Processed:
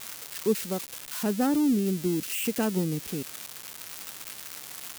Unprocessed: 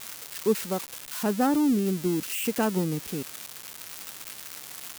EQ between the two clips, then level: dynamic EQ 1000 Hz, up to -6 dB, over -42 dBFS, Q 0.89; 0.0 dB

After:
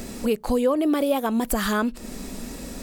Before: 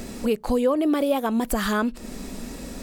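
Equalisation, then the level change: high shelf 7000 Hz +4 dB; 0.0 dB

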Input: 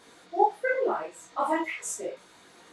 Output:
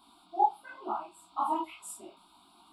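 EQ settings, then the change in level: fixed phaser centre 500 Hz, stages 6; fixed phaser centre 1800 Hz, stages 6; 0.0 dB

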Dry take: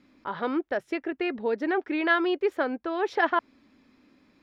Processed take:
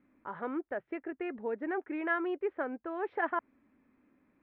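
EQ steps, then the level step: LPF 2200 Hz 24 dB/oct; -8.0 dB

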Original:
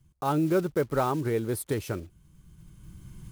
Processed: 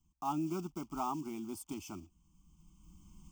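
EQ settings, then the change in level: low shelf 110 Hz -5.5 dB; fixed phaser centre 450 Hz, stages 6; fixed phaser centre 2700 Hz, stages 8; -3.0 dB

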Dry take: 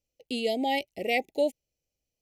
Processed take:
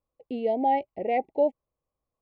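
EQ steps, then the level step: synth low-pass 1100 Hz, resonance Q 11; 0.0 dB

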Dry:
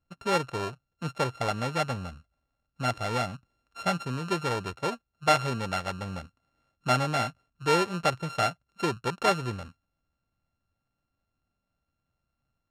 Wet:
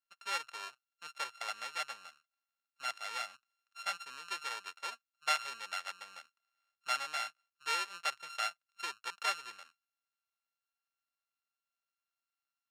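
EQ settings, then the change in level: HPF 1500 Hz 12 dB/oct; -4.5 dB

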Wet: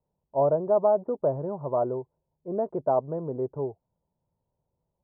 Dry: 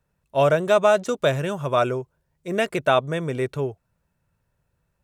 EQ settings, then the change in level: elliptic low-pass 930 Hz, stop band 80 dB; low shelf 170 Hz -8.5 dB; -2.5 dB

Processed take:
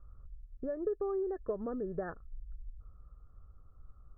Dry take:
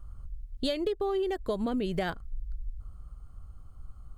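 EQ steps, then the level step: rippled Chebyshev low-pass 1800 Hz, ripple 9 dB; air absorption 410 m; bell 260 Hz -2.5 dB 1.8 oct; 0.0 dB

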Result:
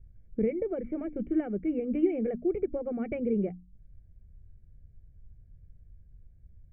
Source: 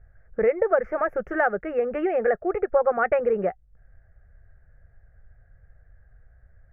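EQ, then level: vocal tract filter i; low shelf 470 Hz +10 dB; notches 60/120/180/240/300 Hz; +4.0 dB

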